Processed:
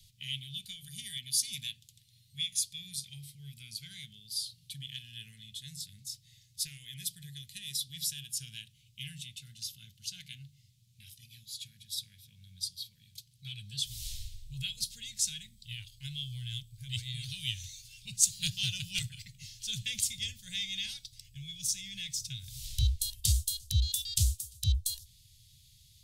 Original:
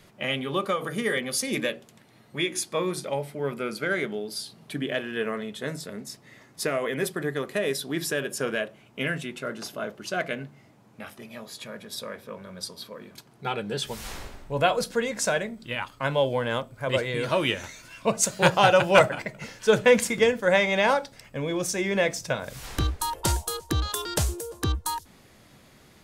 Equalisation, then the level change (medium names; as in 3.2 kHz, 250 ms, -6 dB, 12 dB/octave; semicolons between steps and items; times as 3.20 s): elliptic band-stop 110–3500 Hz, stop band 50 dB; 0.0 dB